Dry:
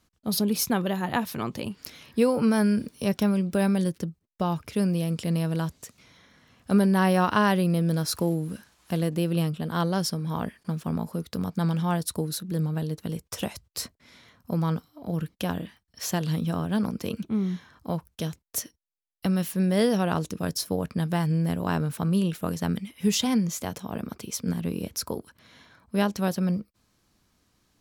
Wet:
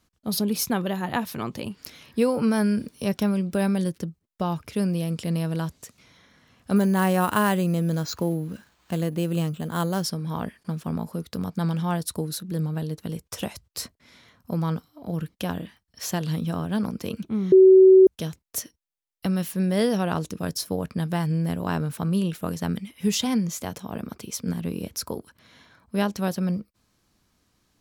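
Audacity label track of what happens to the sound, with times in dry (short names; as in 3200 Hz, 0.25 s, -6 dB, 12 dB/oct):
6.760000	10.040000	careless resampling rate divided by 4×, down filtered, up hold
17.520000	18.070000	bleep 378 Hz -8.5 dBFS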